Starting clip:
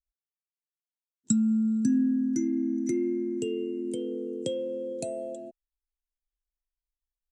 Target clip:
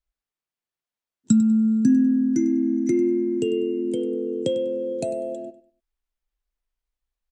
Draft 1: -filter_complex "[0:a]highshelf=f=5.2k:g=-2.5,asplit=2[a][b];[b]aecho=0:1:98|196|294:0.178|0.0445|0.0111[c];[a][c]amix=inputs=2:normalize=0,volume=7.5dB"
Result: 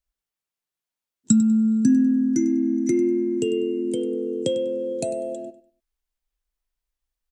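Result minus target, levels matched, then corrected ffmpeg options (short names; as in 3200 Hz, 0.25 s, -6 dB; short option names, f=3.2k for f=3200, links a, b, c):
8000 Hz band +5.5 dB
-filter_complex "[0:a]highshelf=f=5.2k:g=-11,asplit=2[a][b];[b]aecho=0:1:98|196|294:0.178|0.0445|0.0111[c];[a][c]amix=inputs=2:normalize=0,volume=7.5dB"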